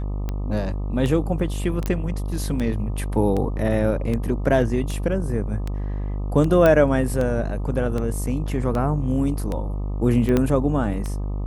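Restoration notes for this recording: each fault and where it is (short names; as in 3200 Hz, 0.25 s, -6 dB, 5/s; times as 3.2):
buzz 50 Hz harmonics 25 -26 dBFS
tick 78 rpm -15 dBFS
1.86 pop -11 dBFS
6.66 pop -7 dBFS
10.37 pop -8 dBFS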